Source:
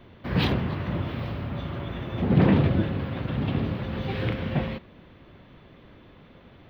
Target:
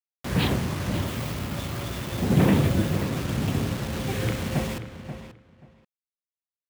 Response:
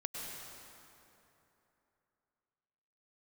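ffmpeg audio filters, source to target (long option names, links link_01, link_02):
-filter_complex "[0:a]asettb=1/sr,asplit=3[link_01][link_02][link_03];[link_01]atrim=end=0.944[link_04];[link_02]atrim=start=0.94:end=3.06,asetpts=PTS-STARTPTS,afade=type=in:duration=0.004:curve=qsin,afade=type=out:start_time=2.116:duration=0.004:curve=qsin,aemphasis=mode=production:type=50fm[link_05];[link_03]atrim=start=3.056[link_06];[link_04][link_05]acrossfade=duration=0.004:curve1=hsin:curve2=qsin[link_07];[link_07][link_06]acrossfade=duration=0.004:curve1=qsin:curve2=hsin,acrusher=bits=5:mix=0:aa=0.000001,asplit=2[link_08][link_09];[link_09]adelay=533,lowpass=frequency=3300:poles=1,volume=-10.5dB,asplit=2[link_10][link_11];[link_11]adelay=533,lowpass=frequency=3300:poles=1,volume=0.18[link_12];[link_08][link_10][link_12]amix=inputs=3:normalize=0"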